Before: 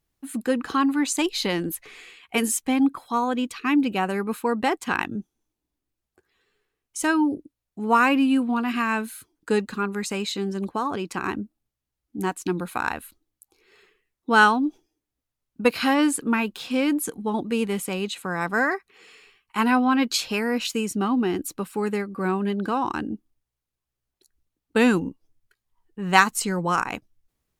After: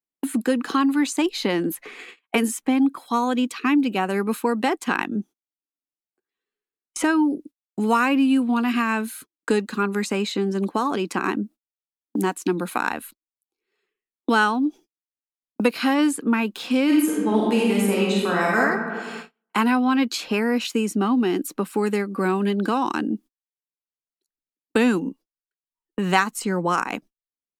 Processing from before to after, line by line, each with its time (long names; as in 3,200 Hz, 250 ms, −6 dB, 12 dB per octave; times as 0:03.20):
0:16.85–0:18.59: thrown reverb, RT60 1.3 s, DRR −4.5 dB
whole clip: noise gate −44 dBFS, range −40 dB; low shelf with overshoot 150 Hz −12.5 dB, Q 1.5; multiband upward and downward compressor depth 70%